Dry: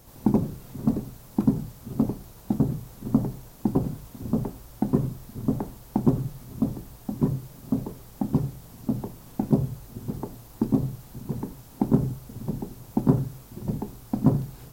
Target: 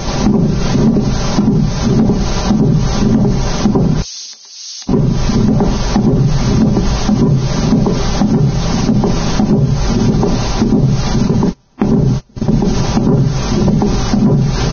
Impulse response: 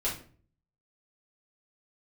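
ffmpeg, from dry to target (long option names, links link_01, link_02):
-filter_complex "[0:a]asplit=3[link_01][link_02][link_03];[link_01]afade=type=out:start_time=11.27:duration=0.02[link_04];[link_02]agate=range=-37dB:threshold=-33dB:ratio=16:detection=peak,afade=type=in:start_time=11.27:duration=0.02,afade=type=out:start_time=12.62:duration=0.02[link_05];[link_03]afade=type=in:start_time=12.62:duration=0.02[link_06];[link_04][link_05][link_06]amix=inputs=3:normalize=0,aecho=1:1:5.1:0.5,acompressor=threshold=-32dB:ratio=8,volume=24dB,asoftclip=hard,volume=-24dB,asettb=1/sr,asplit=3[link_07][link_08][link_09];[link_07]atrim=end=4.024[link_10];[link_08]atrim=start=4.02:end=4.89,asetpts=PTS-STARTPTS,afade=type=in:duration=0.004:curve=qsin,afade=type=out:start_time=0.866:duration=0.004:curve=qsin,asuperpass=centerf=5800:order=4:qfactor=1.3[link_11];[link_09]atrim=start=4.886[link_12];[link_10][link_11]acrossfade=duration=0.004:curve1=hsin:curve2=qsin[link_13];[link_13][link_12]acrossfade=duration=0.004:curve1=qsin:curve2=hsin,alimiter=level_in=35.5dB:limit=-1dB:release=50:level=0:latency=1,volume=-2.5dB" -ar 16000 -c:a libvorbis -b:a 16k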